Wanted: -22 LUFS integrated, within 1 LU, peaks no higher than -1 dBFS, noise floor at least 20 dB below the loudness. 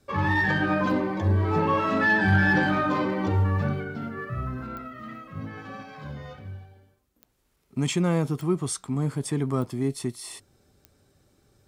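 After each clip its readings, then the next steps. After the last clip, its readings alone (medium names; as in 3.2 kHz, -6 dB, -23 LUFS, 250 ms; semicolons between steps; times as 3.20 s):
clicks found 5; loudness -25.0 LUFS; peak level -10.0 dBFS; loudness target -22.0 LUFS
-> de-click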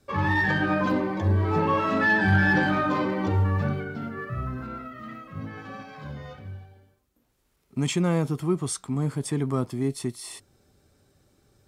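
clicks found 0; loudness -25.0 LUFS; peak level -10.0 dBFS; loudness target -22.0 LUFS
-> trim +3 dB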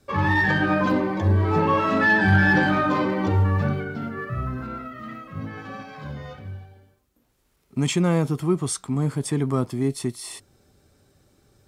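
loudness -22.0 LUFS; peak level -7.0 dBFS; noise floor -67 dBFS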